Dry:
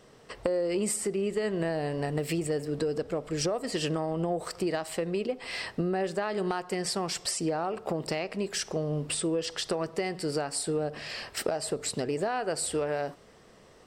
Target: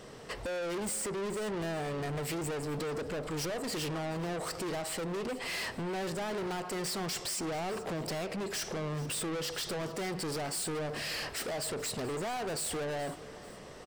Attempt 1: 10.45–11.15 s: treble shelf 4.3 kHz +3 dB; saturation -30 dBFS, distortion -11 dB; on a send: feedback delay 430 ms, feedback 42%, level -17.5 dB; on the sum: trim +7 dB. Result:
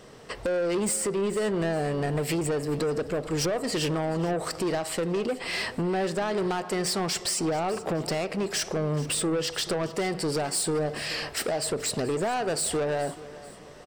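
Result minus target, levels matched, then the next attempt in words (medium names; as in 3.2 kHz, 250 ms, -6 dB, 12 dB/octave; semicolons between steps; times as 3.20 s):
saturation: distortion -7 dB
10.45–11.15 s: treble shelf 4.3 kHz +3 dB; saturation -41 dBFS, distortion -4 dB; on a send: feedback delay 430 ms, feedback 42%, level -17.5 dB; on the sum: trim +7 dB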